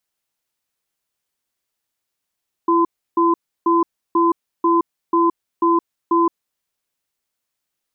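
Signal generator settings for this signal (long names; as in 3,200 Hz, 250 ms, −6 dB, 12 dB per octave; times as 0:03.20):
tone pair in a cadence 337 Hz, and 1,020 Hz, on 0.17 s, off 0.32 s, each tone −15 dBFS 3.67 s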